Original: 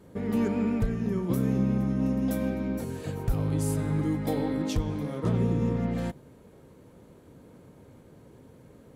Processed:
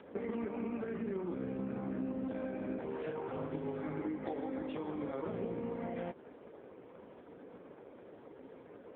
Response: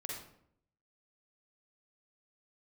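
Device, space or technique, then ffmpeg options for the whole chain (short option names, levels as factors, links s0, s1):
voicemail: -af "highpass=350,lowpass=2700,acompressor=threshold=0.01:ratio=12,volume=2.11" -ar 8000 -c:a libopencore_amrnb -b:a 4750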